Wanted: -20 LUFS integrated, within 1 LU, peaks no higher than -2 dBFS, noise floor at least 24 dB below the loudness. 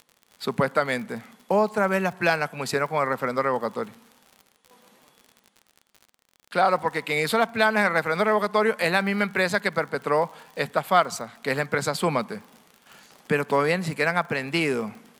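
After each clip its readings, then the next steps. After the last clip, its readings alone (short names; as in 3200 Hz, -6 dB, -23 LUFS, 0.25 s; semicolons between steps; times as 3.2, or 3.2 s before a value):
ticks 55/s; loudness -24.5 LUFS; peak -5.5 dBFS; loudness target -20.0 LUFS
-> de-click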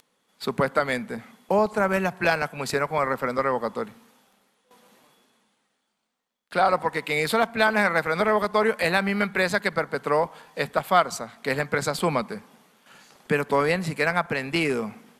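ticks 0.13/s; loudness -24.5 LUFS; peak -5.5 dBFS; loudness target -20.0 LUFS
-> gain +4.5 dB; limiter -2 dBFS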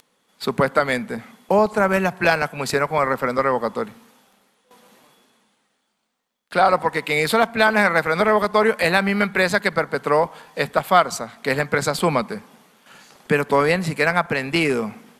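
loudness -20.0 LUFS; peak -2.0 dBFS; noise floor -70 dBFS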